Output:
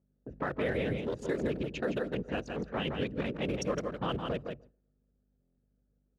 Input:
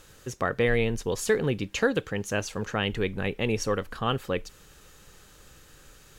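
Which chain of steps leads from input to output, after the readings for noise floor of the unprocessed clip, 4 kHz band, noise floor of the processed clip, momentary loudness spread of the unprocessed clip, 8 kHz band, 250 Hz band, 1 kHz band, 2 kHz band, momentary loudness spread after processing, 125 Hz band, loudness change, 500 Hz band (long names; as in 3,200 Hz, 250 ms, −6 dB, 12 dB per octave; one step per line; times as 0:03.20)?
−54 dBFS, −8.0 dB, −75 dBFS, 6 LU, −14.5 dB, −4.0 dB, −6.0 dB, −9.0 dB, 5 LU, −6.5 dB, −6.5 dB, −6.0 dB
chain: adaptive Wiener filter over 41 samples
random phases in short frames
feedback echo with a band-pass in the loop 139 ms, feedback 64%, band-pass 390 Hz, level −23 dB
mains hum 50 Hz, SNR 16 dB
parametric band 100 Hz −9.5 dB 0.29 octaves
noise gate with hold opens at −34 dBFS
low-pass that shuts in the quiet parts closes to 1,200 Hz, open at −24 dBFS
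on a send: single-tap delay 163 ms −7.5 dB
on the sum: brickwall limiter −19.5 dBFS, peak gain reduction 10 dB
dynamic equaliser 2,300 Hz, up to −3 dB, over −43 dBFS, Q 0.94
high-pass filter 74 Hz 12 dB per octave
buffer that repeats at 0:05.41, samples 1,024, times 6
level −2.5 dB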